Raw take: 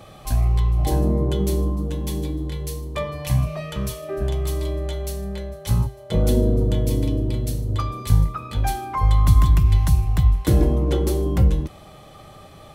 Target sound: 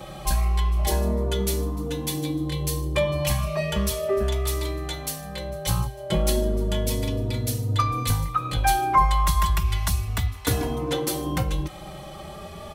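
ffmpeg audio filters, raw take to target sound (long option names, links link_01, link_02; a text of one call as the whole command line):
ffmpeg -i in.wav -filter_complex "[0:a]acrossover=split=740|5500[link_01][link_02][link_03];[link_01]acompressor=threshold=-28dB:ratio=6[link_04];[link_04][link_02][link_03]amix=inputs=3:normalize=0,asplit=2[link_05][link_06];[link_06]adelay=3.3,afreqshift=0.34[link_07];[link_05][link_07]amix=inputs=2:normalize=1,volume=8.5dB" out.wav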